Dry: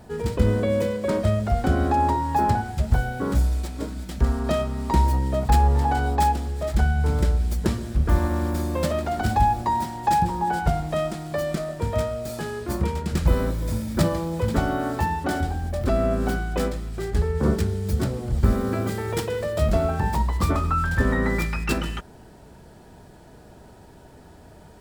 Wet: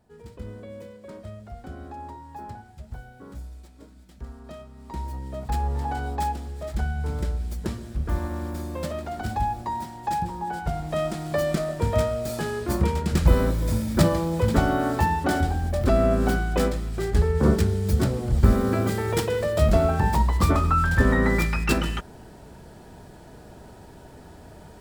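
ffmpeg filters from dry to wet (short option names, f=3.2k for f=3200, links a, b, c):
-af "volume=2dB,afade=t=in:st=4.73:d=1.18:silence=0.266073,afade=t=in:st=10.67:d=0.62:silence=0.375837"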